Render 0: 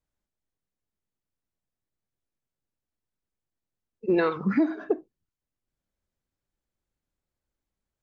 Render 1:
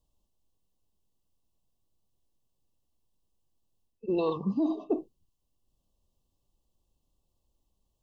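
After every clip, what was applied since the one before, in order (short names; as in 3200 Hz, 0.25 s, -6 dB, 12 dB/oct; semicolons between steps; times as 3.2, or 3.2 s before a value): FFT band-reject 1200–2600 Hz; low shelf 62 Hz +8 dB; reverse; compressor 5:1, threshold -33 dBFS, peak gain reduction 14 dB; reverse; gain +6.5 dB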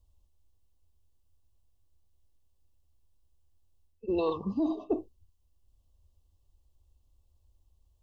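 resonant low shelf 110 Hz +9 dB, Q 3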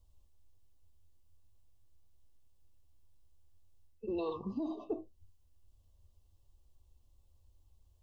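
flange 0.44 Hz, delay 7.8 ms, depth 3.6 ms, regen +64%; compressor 2:1, threshold -46 dBFS, peak gain reduction 10 dB; gain +5.5 dB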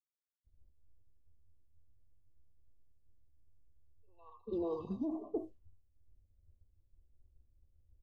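three bands offset in time mids, highs, lows 0.21/0.44 s, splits 1100/4200 Hz; low-pass opened by the level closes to 370 Hz, open at -34.5 dBFS; expander -60 dBFS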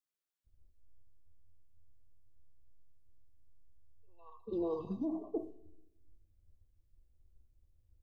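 shoebox room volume 3100 m³, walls furnished, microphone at 0.6 m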